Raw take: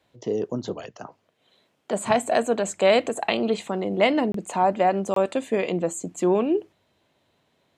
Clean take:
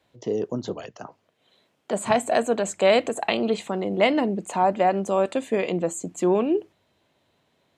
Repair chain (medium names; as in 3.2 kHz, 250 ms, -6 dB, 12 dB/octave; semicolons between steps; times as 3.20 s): interpolate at 4.32/5.14 s, 23 ms